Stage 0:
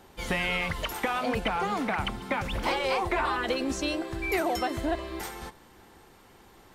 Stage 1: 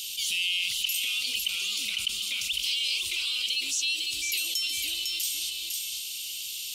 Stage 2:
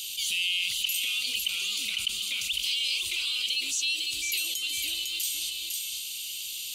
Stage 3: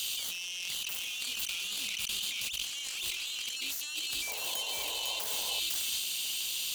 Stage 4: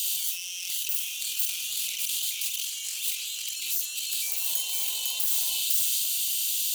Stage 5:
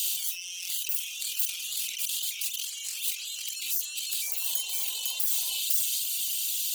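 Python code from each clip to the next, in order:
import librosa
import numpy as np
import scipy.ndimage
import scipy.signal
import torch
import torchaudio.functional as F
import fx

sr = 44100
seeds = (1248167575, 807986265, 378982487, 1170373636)

y1 = scipy.signal.sosfilt(scipy.signal.ellip(4, 1.0, 40, 2800.0, 'highpass', fs=sr, output='sos'), x)
y1 = y1 + 10.0 ** (-9.5 / 20.0) * np.pad(y1, (int(503 * sr / 1000.0), 0))[:len(y1)]
y1 = fx.env_flatten(y1, sr, amount_pct=70)
y1 = y1 * 10.0 ** (6.5 / 20.0)
y2 = fx.notch(y1, sr, hz=5400.0, q=10.0)
y3 = fx.self_delay(y2, sr, depth_ms=0.088)
y3 = fx.over_compress(y3, sr, threshold_db=-36.0, ratio=-1.0)
y3 = fx.spec_paint(y3, sr, seeds[0], shape='noise', start_s=4.27, length_s=1.33, low_hz=410.0, high_hz=1100.0, level_db=-47.0)
y4 = librosa.effects.preemphasis(y3, coef=0.9, zi=[0.0])
y4 = fx.hum_notches(y4, sr, base_hz=60, count=3)
y4 = fx.doubler(y4, sr, ms=46.0, db=-6)
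y4 = y4 * 10.0 ** (7.0 / 20.0)
y5 = fx.dereverb_blind(y4, sr, rt60_s=0.85)
y5 = fx.low_shelf(y5, sr, hz=180.0, db=-3.0)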